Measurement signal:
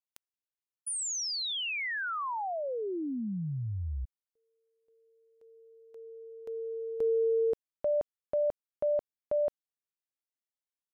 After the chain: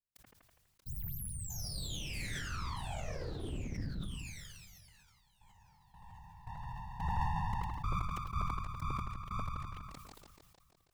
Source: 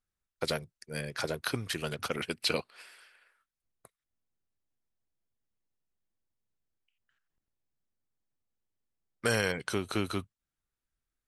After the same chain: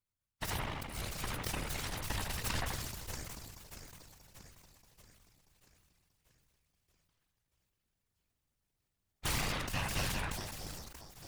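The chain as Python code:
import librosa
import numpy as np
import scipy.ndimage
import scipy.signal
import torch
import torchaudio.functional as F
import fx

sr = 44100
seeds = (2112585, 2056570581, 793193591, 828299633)

p1 = fx.spec_clip(x, sr, under_db=20)
p2 = p1 + fx.echo_split(p1, sr, split_hz=1900.0, low_ms=82, high_ms=634, feedback_pct=52, wet_db=-7.5, dry=0)
p3 = np.abs(p2)
p4 = fx.whisperise(p3, sr, seeds[0])
p5 = fx.sustainer(p4, sr, db_per_s=26.0)
y = p5 * librosa.db_to_amplitude(-5.0)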